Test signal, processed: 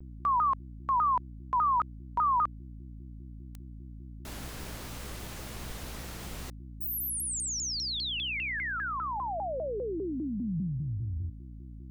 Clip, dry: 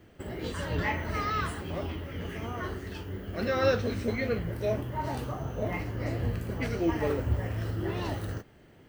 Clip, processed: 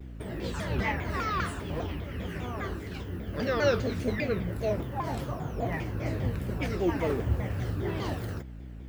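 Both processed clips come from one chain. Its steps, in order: dynamic bell 180 Hz, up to +3 dB, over -49 dBFS, Q 4.4; hum 60 Hz, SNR 11 dB; vibrato with a chosen wave saw down 5 Hz, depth 250 cents

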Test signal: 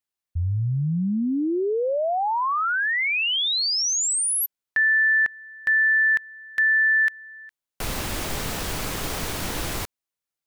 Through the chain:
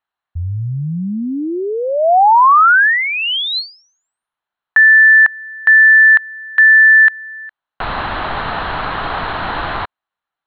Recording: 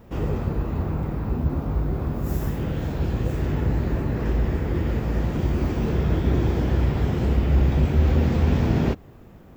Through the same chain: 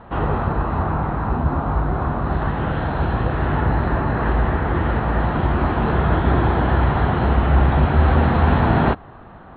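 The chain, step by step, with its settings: rippled Chebyshev low-pass 4.2 kHz, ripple 3 dB; high-order bell 1.1 kHz +9.5 dB; trim +6 dB

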